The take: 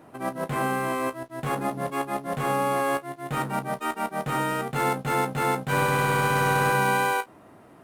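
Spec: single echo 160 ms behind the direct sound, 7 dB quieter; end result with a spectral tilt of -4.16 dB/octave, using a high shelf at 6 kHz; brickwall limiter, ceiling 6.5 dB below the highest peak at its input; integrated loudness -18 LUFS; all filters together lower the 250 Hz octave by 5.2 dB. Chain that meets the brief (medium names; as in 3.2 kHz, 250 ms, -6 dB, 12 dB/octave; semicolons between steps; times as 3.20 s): peaking EQ 250 Hz -7.5 dB; treble shelf 6 kHz +5.5 dB; peak limiter -18 dBFS; delay 160 ms -7 dB; trim +10 dB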